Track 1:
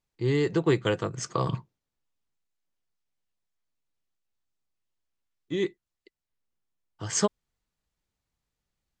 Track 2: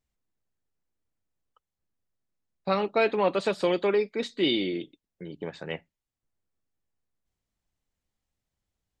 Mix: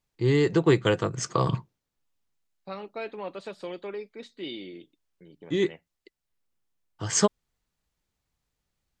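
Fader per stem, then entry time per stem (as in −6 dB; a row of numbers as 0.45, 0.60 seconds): +3.0, −12.0 decibels; 0.00, 0.00 seconds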